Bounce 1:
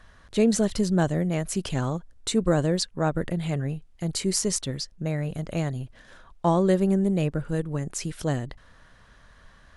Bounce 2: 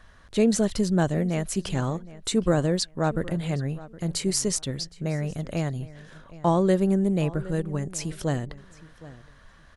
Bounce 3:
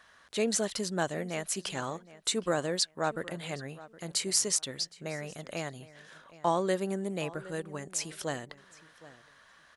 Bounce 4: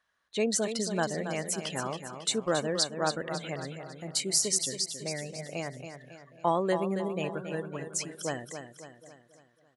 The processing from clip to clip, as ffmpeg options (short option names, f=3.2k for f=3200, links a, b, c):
-filter_complex "[0:a]asplit=2[a][b];[b]adelay=766,lowpass=f=3.5k:p=1,volume=-18dB,asplit=2[c][d];[d]adelay=766,lowpass=f=3.5k:p=1,volume=0.21[e];[a][c][e]amix=inputs=3:normalize=0"
-af "highpass=f=870:p=1"
-af "afftdn=nr=19:nf=-42,aecho=1:1:275|550|825|1100|1375:0.376|0.18|0.0866|0.0416|0.02,volume=1dB"